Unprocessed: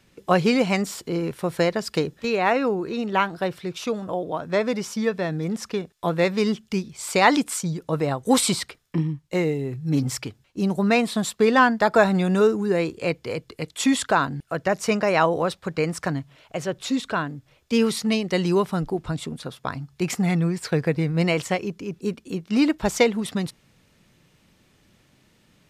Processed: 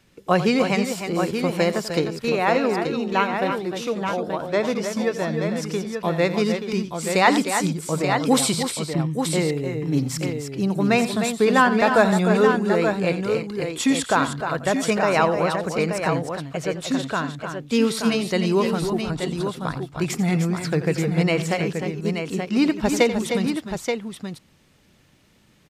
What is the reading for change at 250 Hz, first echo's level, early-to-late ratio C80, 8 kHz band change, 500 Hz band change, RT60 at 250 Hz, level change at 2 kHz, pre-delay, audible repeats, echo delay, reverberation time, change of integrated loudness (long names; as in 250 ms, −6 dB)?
+1.5 dB, −13.5 dB, no reverb audible, +1.5 dB, +1.5 dB, no reverb audible, +1.5 dB, no reverb audible, 3, 88 ms, no reverb audible, +1.5 dB